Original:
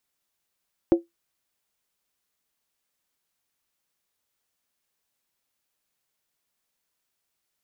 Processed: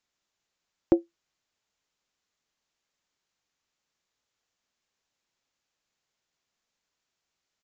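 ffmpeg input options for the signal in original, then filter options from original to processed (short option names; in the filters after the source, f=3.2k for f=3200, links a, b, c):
-f lavfi -i "aevalsrc='0.335*pow(10,-3*t/0.16)*sin(2*PI*339*t)+0.1*pow(10,-3*t/0.127)*sin(2*PI*540.4*t)+0.0299*pow(10,-3*t/0.109)*sin(2*PI*724.1*t)+0.00891*pow(10,-3*t/0.106)*sin(2*PI*778.3*t)+0.00266*pow(10,-3*t/0.098)*sin(2*PI*899.4*t)':d=0.63:s=44100"
-af "aresample=16000,aresample=44100"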